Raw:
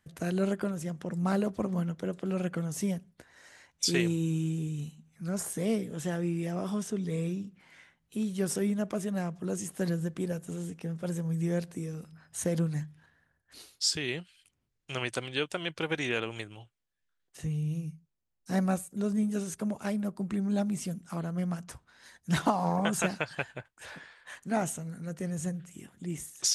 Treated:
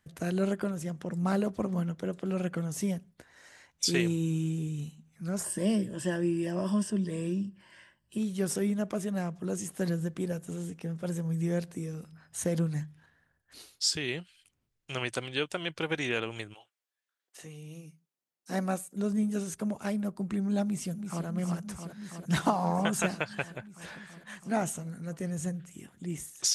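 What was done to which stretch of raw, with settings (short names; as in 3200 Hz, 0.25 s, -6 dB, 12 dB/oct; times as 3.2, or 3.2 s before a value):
5.44–8.18 ripple EQ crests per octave 1.3, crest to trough 11 dB
16.53–18.96 HPF 590 Hz -> 190 Hz
20.65–21.26 echo throw 0.33 s, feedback 85%, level -7 dB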